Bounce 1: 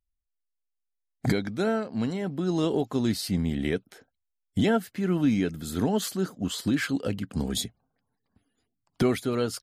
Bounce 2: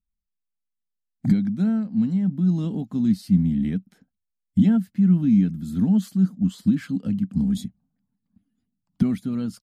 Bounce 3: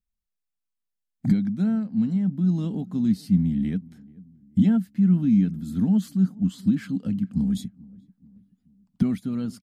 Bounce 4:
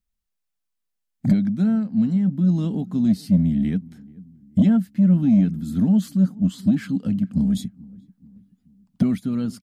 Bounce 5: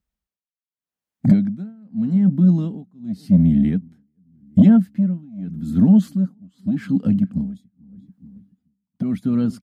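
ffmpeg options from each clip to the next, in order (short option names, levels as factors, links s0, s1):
-af "firequalizer=gain_entry='entry(130,0);entry(190,13);entry(380,-14);entry(790,-11)':delay=0.05:min_phase=1"
-filter_complex "[0:a]asplit=2[s0][s1];[s1]adelay=432,lowpass=f=890:p=1,volume=0.0708,asplit=2[s2][s3];[s3]adelay=432,lowpass=f=890:p=1,volume=0.5,asplit=2[s4][s5];[s5]adelay=432,lowpass=f=890:p=1,volume=0.5[s6];[s0][s2][s4][s6]amix=inputs=4:normalize=0,volume=0.841"
-af "asoftclip=type=tanh:threshold=0.266,volume=1.58"
-af "highpass=50,highshelf=f=2300:g=-8.5,tremolo=f=0.85:d=0.97,volume=1.88"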